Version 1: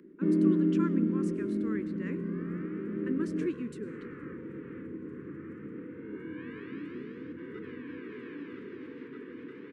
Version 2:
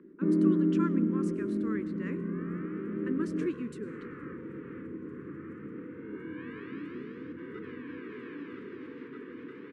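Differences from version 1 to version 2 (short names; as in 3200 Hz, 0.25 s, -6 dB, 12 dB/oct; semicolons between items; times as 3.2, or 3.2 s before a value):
first sound: add LPF 1800 Hz; master: add bell 1200 Hz +4 dB 0.57 oct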